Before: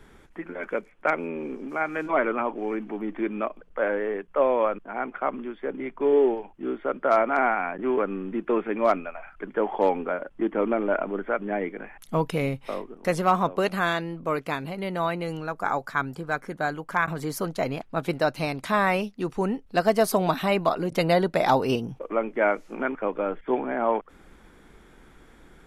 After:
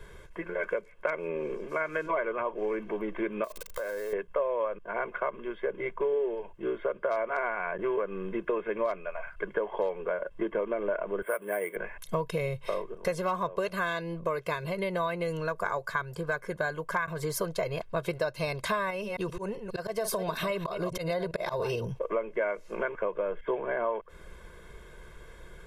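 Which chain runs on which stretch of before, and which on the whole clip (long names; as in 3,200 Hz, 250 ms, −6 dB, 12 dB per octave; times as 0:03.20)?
0:03.44–0:04.13: spike at every zero crossing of −29 dBFS + downward compressor 12 to 1, threshold −34 dBFS
0:11.22–0:11.76: high-pass filter 460 Hz 6 dB per octave + bad sample-rate conversion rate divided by 4×, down filtered, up hold
0:18.90–0:21.86: delay that plays each chunk backwards 134 ms, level −13 dB + volume swells 205 ms + downward compressor 3 to 1, threshold −27 dBFS
whole clip: comb filter 1.9 ms, depth 97%; downward compressor, threshold −27 dBFS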